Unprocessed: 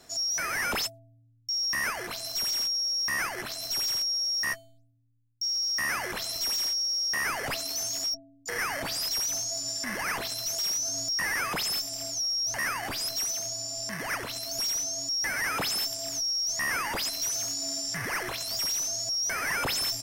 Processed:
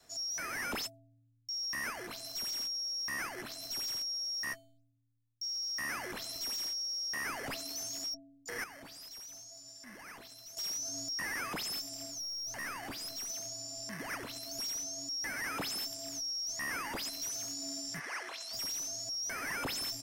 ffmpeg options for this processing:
-filter_complex "[0:a]asettb=1/sr,asplit=3[s0][s1][s2];[s0]atrim=end=12.054[s3];[s1]atrim=start=12.05:end=13.3,asetpts=PTS-STARTPTS,afade=t=in:d=0.004:c=qsin,afade=t=out:st=1.246:d=0.004:c=qsin,aeval=exprs='(tanh(22.4*val(0)+0.2)-tanh(0.2))/22.4':c=same[s4];[s2]atrim=start=13.296[s5];[s3][s4]acrossfade=d=0.004:c1=hsin:c2=qsin[s6];[s6][s5]acrossfade=d=0.004:c1=qsin:c2=hsin,asplit=3[s7][s8][s9];[s7]afade=t=out:st=17.99:d=0.02[s10];[s8]highpass=610,lowpass=7900,afade=t=in:st=17.99:d=0.02,afade=t=out:st=18.52:d=0.02[s11];[s9]afade=t=in:st=18.52:d=0.02[s12];[s10][s11][s12]amix=inputs=3:normalize=0,asplit=3[s13][s14][s15];[s13]atrim=end=8.642[s16];[s14]atrim=start=8.638:end=10.572,asetpts=PTS-STARTPTS,volume=0.299[s17];[s15]atrim=start=10.568[s18];[s16][s17]acrossfade=d=0.004:c1=hsin:c2=hsin[s19];[s19][s18]acrossfade=d=0.004:c1=hsin:c2=hsin,adynamicequalizer=threshold=0.00141:dfrequency=270:dqfactor=1.7:tfrequency=270:tqfactor=1.7:attack=5:release=100:ratio=0.375:range=3.5:mode=boostabove:tftype=bell,volume=0.376"

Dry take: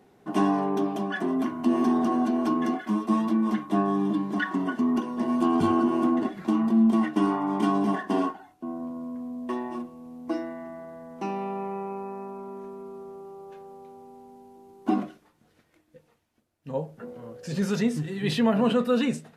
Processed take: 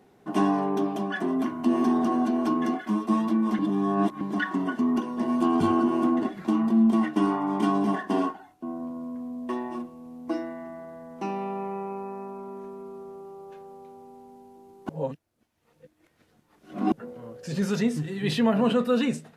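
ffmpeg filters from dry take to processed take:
-filter_complex "[0:a]asplit=5[s0][s1][s2][s3][s4];[s0]atrim=end=3.592[s5];[s1]atrim=start=3.588:end=4.212,asetpts=PTS-STARTPTS,areverse[s6];[s2]atrim=start=4.208:end=14.892[s7];[s3]atrim=start=14.888:end=16.922,asetpts=PTS-STARTPTS,areverse[s8];[s4]atrim=start=16.918[s9];[s5][s6]acrossfade=d=0.004:c1=hsin:c2=hsin[s10];[s10][s7]acrossfade=d=0.004:c1=hsin:c2=hsin[s11];[s11][s8]acrossfade=d=0.004:c1=hsin:c2=hsin[s12];[s12][s9]acrossfade=d=0.004:c1=hsin:c2=hsin"

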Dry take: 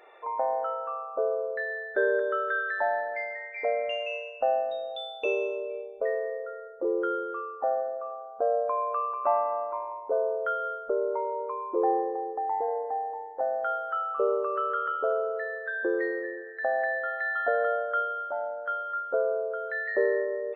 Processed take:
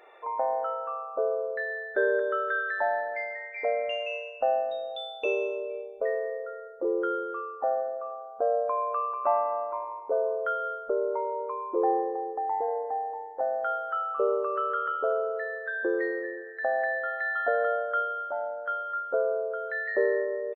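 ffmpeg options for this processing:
-filter_complex "[0:a]asplit=2[s0][s1];[s1]afade=t=in:st=9.57:d=0.01,afade=t=out:st=9.99:d=0.01,aecho=0:1:270|540|810|1080:0.133352|0.0600085|0.0270038|0.0121517[s2];[s0][s2]amix=inputs=2:normalize=0"

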